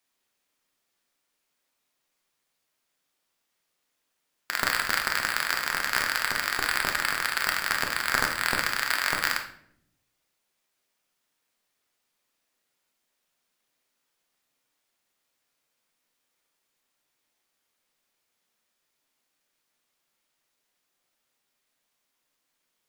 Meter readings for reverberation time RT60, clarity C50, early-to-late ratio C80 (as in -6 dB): 0.70 s, 8.0 dB, 12.0 dB